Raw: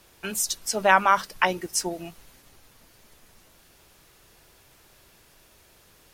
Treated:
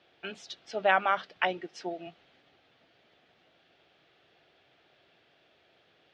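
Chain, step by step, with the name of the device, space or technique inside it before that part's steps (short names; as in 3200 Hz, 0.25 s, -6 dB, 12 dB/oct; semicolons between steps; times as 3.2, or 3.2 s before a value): kitchen radio (speaker cabinet 170–3700 Hz, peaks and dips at 210 Hz -5 dB, 710 Hz +6 dB, 1000 Hz -9 dB, 3300 Hz +4 dB); 1.63–2.07 HPF 150 Hz; gain -5.5 dB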